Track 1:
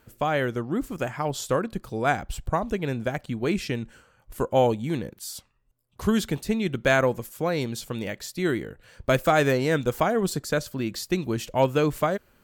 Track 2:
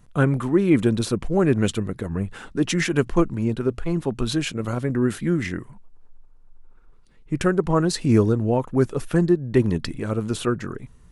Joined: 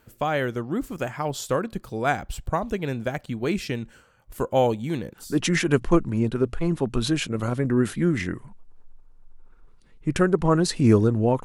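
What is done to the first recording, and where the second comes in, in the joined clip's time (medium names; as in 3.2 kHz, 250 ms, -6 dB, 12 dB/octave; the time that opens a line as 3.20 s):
track 1
5.27 s: go over to track 2 from 2.52 s, crossfade 0.28 s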